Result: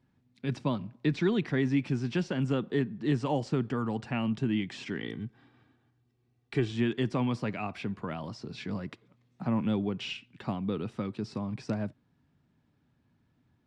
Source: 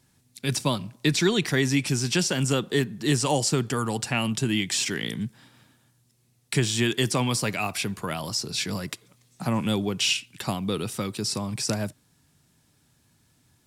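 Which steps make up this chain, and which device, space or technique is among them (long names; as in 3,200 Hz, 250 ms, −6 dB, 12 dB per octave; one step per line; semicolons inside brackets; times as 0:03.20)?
0:05.00–0:06.72: comb filter 2.6 ms, depth 57%
phone in a pocket (low-pass filter 3,200 Hz 12 dB per octave; parametric band 240 Hz +4.5 dB 0.64 octaves; high-shelf EQ 2,300 Hz −8.5 dB)
level −5.5 dB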